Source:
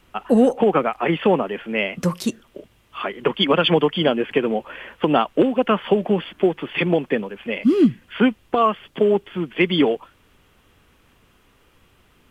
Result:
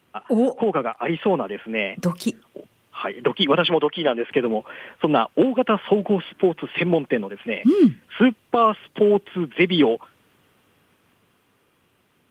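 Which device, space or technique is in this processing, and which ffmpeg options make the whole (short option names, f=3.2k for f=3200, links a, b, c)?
video call: -filter_complex "[0:a]asplit=3[a][b][c];[a]afade=t=out:st=3.69:d=0.02[d];[b]bass=f=250:g=-11,treble=f=4k:g=-8,afade=t=in:st=3.69:d=0.02,afade=t=out:st=4.3:d=0.02[e];[c]afade=t=in:st=4.3:d=0.02[f];[d][e][f]amix=inputs=3:normalize=0,highpass=f=100:w=0.5412,highpass=f=100:w=1.3066,dynaudnorm=f=200:g=17:m=12dB,volume=-4dB" -ar 48000 -c:a libopus -b:a 32k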